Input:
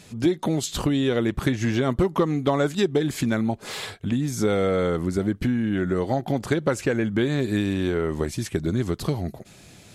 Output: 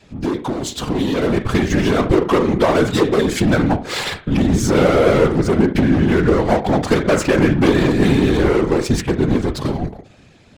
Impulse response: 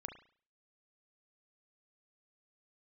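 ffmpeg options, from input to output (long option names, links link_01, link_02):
-filter_complex "[0:a]asplit=2[link_01][link_02];[1:a]atrim=start_sample=2205[link_03];[link_02][link_03]afir=irnorm=-1:irlink=0,volume=6.5dB[link_04];[link_01][link_04]amix=inputs=2:normalize=0,adynamicequalizer=threshold=0.0178:dfrequency=160:dqfactor=3.7:tfrequency=160:tqfactor=3.7:attack=5:release=100:ratio=0.375:range=3:mode=cutabove:tftype=bell,atempo=0.94,asplit=2[link_05][link_06];[link_06]acrusher=bits=3:mix=0:aa=0.5,volume=-9dB[link_07];[link_05][link_07]amix=inputs=2:normalize=0,volume=12dB,asoftclip=hard,volume=-12dB,adynamicsmooth=sensitivity=4:basefreq=4000,afftfilt=real='hypot(re,im)*cos(2*PI*random(0))':imag='hypot(re,im)*sin(2*PI*random(1))':win_size=512:overlap=0.75,dynaudnorm=framelen=200:gausssize=13:maxgain=11.5dB"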